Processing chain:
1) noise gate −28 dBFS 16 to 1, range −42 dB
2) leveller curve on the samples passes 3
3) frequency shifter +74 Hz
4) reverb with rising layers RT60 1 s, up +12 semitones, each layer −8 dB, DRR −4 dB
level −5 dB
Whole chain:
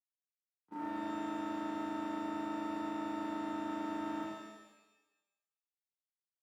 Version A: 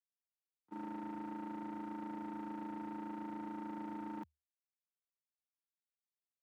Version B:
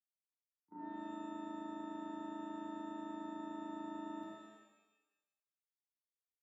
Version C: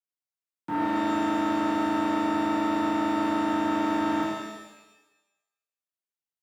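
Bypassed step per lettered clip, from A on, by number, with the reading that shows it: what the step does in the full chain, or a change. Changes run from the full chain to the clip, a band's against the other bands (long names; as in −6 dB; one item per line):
4, 125 Hz band +7.0 dB
2, change in integrated loudness −6.5 LU
1, change in momentary loudness spread +2 LU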